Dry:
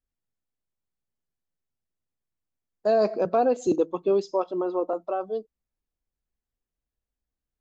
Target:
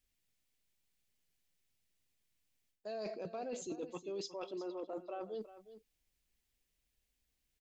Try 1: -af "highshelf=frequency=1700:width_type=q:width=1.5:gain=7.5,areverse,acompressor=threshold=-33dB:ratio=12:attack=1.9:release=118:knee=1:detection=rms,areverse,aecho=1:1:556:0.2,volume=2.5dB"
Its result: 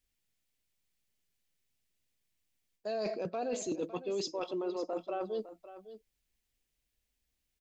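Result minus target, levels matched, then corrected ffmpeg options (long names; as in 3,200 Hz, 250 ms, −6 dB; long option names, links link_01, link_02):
echo 194 ms late; downward compressor: peak gain reduction −7 dB
-af "highshelf=frequency=1700:width_type=q:width=1.5:gain=7.5,areverse,acompressor=threshold=-40.5dB:ratio=12:attack=1.9:release=118:knee=1:detection=rms,areverse,aecho=1:1:362:0.2,volume=2.5dB"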